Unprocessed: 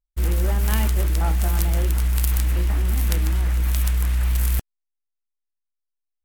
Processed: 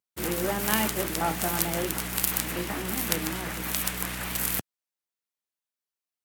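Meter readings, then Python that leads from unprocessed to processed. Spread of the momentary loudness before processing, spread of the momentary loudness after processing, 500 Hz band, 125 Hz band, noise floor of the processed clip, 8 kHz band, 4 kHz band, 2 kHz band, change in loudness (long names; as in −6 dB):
1 LU, 6 LU, +2.5 dB, −16.5 dB, below −85 dBFS, +3.0 dB, +3.0 dB, +3.0 dB, −5.5 dB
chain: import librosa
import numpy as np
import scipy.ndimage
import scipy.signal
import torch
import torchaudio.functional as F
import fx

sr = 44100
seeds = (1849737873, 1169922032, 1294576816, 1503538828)

y = scipy.signal.sosfilt(scipy.signal.bessel(4, 190.0, 'highpass', norm='mag', fs=sr, output='sos'), x)
y = y * 10.0 ** (3.0 / 20.0)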